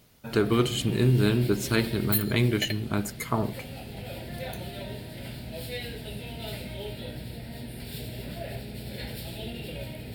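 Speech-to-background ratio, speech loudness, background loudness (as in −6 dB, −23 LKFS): 10.0 dB, −26.5 LKFS, −36.5 LKFS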